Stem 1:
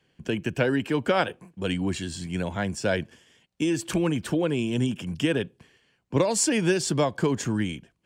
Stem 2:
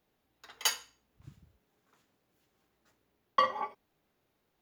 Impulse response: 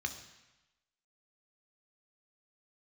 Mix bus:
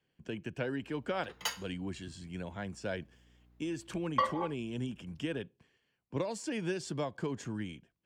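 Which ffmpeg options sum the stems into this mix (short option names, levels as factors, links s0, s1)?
-filter_complex "[0:a]deesser=0.45,highshelf=f=10000:g=-11.5,volume=0.251[s0];[1:a]aeval=exprs='val(0)+0.000891*(sin(2*PI*60*n/s)+sin(2*PI*2*60*n/s)/2+sin(2*PI*3*60*n/s)/3+sin(2*PI*4*60*n/s)/4+sin(2*PI*5*60*n/s)/5)':c=same,highshelf=f=3500:g=-7.5,adelay=800,volume=0.794[s1];[s0][s1]amix=inputs=2:normalize=0"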